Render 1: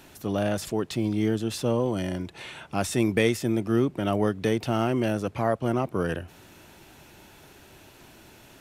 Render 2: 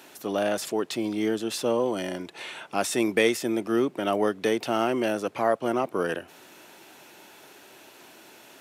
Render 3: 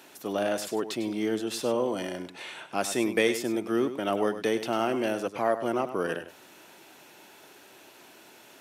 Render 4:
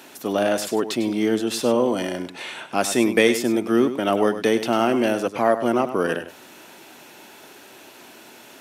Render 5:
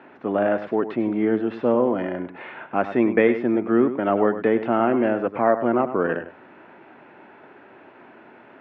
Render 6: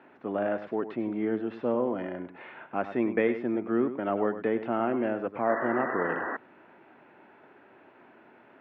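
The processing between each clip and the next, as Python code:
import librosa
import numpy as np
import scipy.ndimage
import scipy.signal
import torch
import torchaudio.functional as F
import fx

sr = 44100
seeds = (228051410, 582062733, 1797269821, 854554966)

y1 = scipy.signal.sosfilt(scipy.signal.butter(2, 310.0, 'highpass', fs=sr, output='sos'), x)
y1 = F.gain(torch.from_numpy(y1), 2.5).numpy()
y2 = y1 + 10.0 ** (-11.5 / 20.0) * np.pad(y1, (int(100 * sr / 1000.0), 0))[:len(y1)]
y2 = F.gain(torch.from_numpy(y2), -2.5).numpy()
y3 = fx.peak_eq(y2, sr, hz=240.0, db=5.0, octaves=0.23)
y3 = F.gain(torch.from_numpy(y3), 7.0).numpy()
y4 = scipy.signal.sosfilt(scipy.signal.butter(4, 2000.0, 'lowpass', fs=sr, output='sos'), y3)
y5 = fx.spec_paint(y4, sr, seeds[0], shape='noise', start_s=5.49, length_s=0.88, low_hz=210.0, high_hz=2000.0, level_db=-25.0)
y5 = F.gain(torch.from_numpy(y5), -8.0).numpy()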